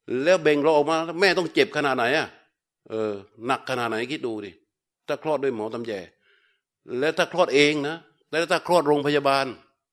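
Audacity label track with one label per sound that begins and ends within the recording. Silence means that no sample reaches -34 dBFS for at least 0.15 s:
2.900000	3.210000	sound
3.420000	4.500000	sound
5.090000	6.050000	sound
6.890000	7.980000	sound
8.330000	9.540000	sound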